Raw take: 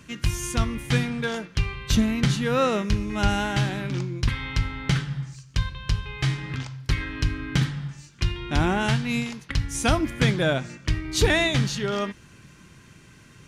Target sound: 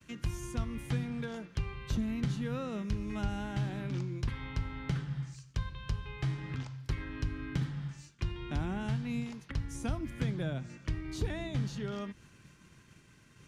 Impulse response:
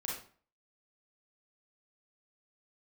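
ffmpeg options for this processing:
-filter_complex "[0:a]agate=range=-33dB:threshold=-46dB:ratio=3:detection=peak,acrossover=split=240|1200[a][b][c];[a]acompressor=threshold=-23dB:ratio=4[d];[b]acompressor=threshold=-36dB:ratio=4[e];[c]acompressor=threshold=-43dB:ratio=4[f];[d][e][f]amix=inputs=3:normalize=0,volume=-6.5dB"

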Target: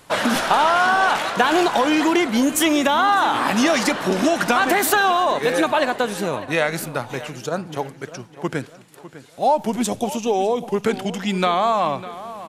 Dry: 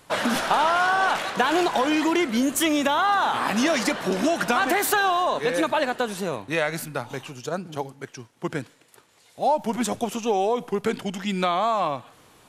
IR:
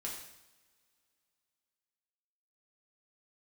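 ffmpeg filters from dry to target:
-filter_complex "[0:a]asettb=1/sr,asplit=3[a][b][c];[a]atrim=end=9.694[d];[b]atrim=start=9.69:end=10.74,asetpts=PTS-STARTPTS,afade=t=in:d=0.004:c=qsin,afade=t=out:st=1.046:d=0.004:c=qsin,equalizer=f=1.4k:t=o:w=1.2:g=-7.5[e];[c]atrim=start=10.736[f];[d][e]acrossfade=d=0.004:c1=hsin:c2=qsin[g];[g][f]acrossfade=d=0.004:c1=qsin:c2=hsin,asplit=2[h][i];[i]adelay=602,lowpass=f=3.4k:p=1,volume=-15dB,asplit=2[j][k];[k]adelay=602,lowpass=f=3.4k:p=1,volume=0.43,asplit=2[l][m];[m]adelay=602,lowpass=f=3.4k:p=1,volume=0.43,asplit=2[n][o];[o]adelay=602,lowpass=f=3.4k:p=1,volume=0.43[p];[h][j][l][n][p]amix=inputs=5:normalize=0,volume=4dB"

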